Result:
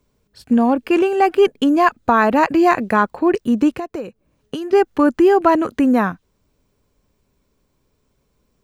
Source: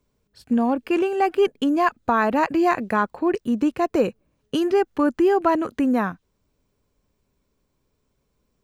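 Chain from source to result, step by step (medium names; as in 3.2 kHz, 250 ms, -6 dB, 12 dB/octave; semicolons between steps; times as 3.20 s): 3.77–4.73 s: compression 8:1, threshold -30 dBFS, peak gain reduction 15.5 dB; trim +5.5 dB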